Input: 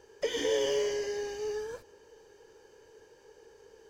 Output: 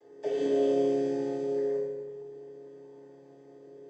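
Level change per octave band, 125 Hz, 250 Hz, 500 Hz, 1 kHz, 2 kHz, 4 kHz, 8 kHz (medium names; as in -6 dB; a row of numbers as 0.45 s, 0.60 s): +9.0 dB, +12.5 dB, +3.5 dB, +3.0 dB, no reading, under -10 dB, under -10 dB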